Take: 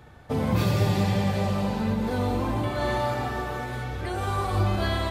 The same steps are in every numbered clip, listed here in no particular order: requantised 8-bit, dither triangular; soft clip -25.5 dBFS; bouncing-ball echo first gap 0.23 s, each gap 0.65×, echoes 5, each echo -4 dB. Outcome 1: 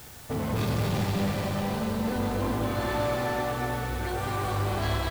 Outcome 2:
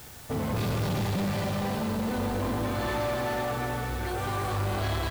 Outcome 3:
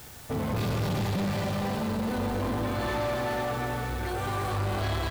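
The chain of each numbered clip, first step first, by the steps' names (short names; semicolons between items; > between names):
soft clip > bouncing-ball echo > requantised; bouncing-ball echo > soft clip > requantised; bouncing-ball echo > requantised > soft clip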